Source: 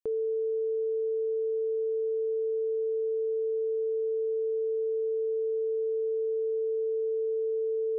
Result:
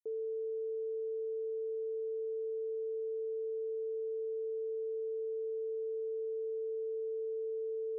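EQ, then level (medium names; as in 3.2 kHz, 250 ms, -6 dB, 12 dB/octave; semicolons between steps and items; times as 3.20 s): band-pass filter 430 Hz, Q 3.1; -8.0 dB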